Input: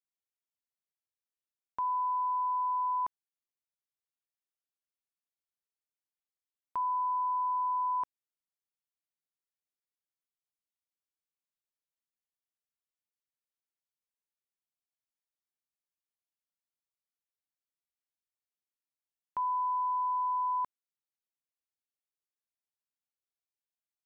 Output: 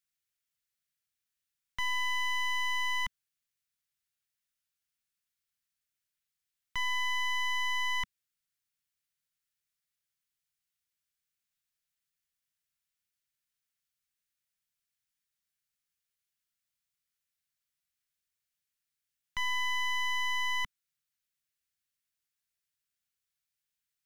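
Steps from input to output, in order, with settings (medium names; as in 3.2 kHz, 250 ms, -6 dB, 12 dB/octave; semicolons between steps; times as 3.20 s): one-sided wavefolder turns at -33 dBFS; high-order bell 510 Hz -14 dB 2.4 oct; trim +7.5 dB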